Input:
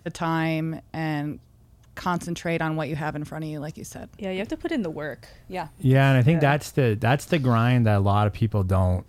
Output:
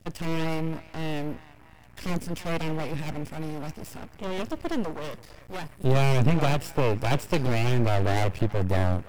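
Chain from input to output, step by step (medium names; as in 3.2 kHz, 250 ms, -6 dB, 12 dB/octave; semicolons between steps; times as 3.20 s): comb filter that takes the minimum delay 0.38 ms; dynamic bell 1.4 kHz, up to -4 dB, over -39 dBFS, Q 1.1; on a send: band-passed feedback delay 331 ms, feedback 82%, band-pass 1.3 kHz, level -17 dB; on the sum: half-wave rectifier; trim +3 dB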